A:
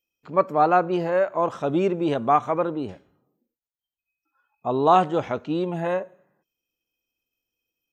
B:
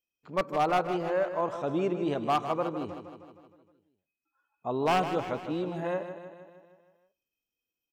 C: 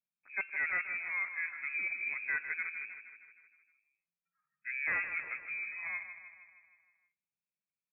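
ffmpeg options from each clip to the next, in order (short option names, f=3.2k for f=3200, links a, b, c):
-filter_complex "[0:a]aeval=exprs='0.266*(abs(mod(val(0)/0.266+3,4)-2)-1)':c=same,asplit=2[a][b];[b]aecho=0:1:156|312|468|624|780|936|1092:0.316|0.183|0.106|0.0617|0.0358|0.0208|0.012[c];[a][c]amix=inputs=2:normalize=0,volume=-7dB"
-af "lowpass=f=2.3k:t=q:w=0.5098,lowpass=f=2.3k:t=q:w=0.6013,lowpass=f=2.3k:t=q:w=0.9,lowpass=f=2.3k:t=q:w=2.563,afreqshift=-2700,volume=-8dB"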